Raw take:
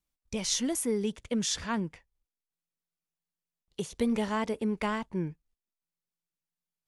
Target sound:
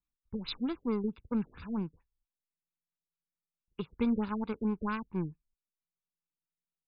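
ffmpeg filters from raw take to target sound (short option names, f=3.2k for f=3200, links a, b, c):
-af "aeval=exprs='0.15*(cos(1*acos(clip(val(0)/0.15,-1,1)))-cos(1*PI/2))+0.0106*(cos(7*acos(clip(val(0)/0.15,-1,1)))-cos(7*PI/2))':c=same,aecho=1:1:0.8:0.7,afftfilt=real='re*lt(b*sr/1024,590*pow(5100/590,0.5+0.5*sin(2*PI*4.5*pts/sr)))':imag='im*lt(b*sr/1024,590*pow(5100/590,0.5+0.5*sin(2*PI*4.5*pts/sr)))':win_size=1024:overlap=0.75,volume=-3dB"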